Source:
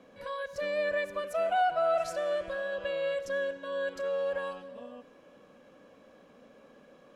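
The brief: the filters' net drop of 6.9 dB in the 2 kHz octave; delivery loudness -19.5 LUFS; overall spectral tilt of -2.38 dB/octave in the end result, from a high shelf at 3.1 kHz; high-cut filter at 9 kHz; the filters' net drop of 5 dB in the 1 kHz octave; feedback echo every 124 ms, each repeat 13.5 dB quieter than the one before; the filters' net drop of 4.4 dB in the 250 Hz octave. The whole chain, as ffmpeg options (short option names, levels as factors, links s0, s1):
-af "lowpass=9000,equalizer=f=250:t=o:g=-5.5,equalizer=f=1000:t=o:g=-7,equalizer=f=2000:t=o:g=-8,highshelf=f=3100:g=5.5,aecho=1:1:124|248:0.211|0.0444,volume=6.31"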